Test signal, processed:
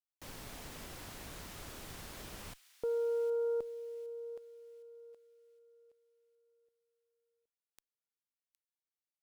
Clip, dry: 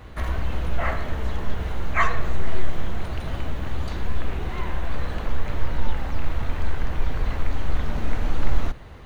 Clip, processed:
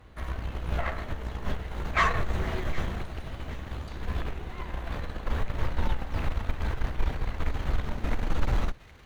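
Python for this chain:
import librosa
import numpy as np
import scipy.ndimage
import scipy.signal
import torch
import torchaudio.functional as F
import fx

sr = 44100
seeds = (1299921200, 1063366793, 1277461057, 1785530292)

y = fx.cheby_harmonics(x, sr, harmonics=(6, 7), levels_db=(-33, -22), full_scale_db=-4.5)
y = fx.echo_wet_highpass(y, sr, ms=763, feedback_pct=40, hz=2100.0, wet_db=-13)
y = y * librosa.db_to_amplitude(-3.0)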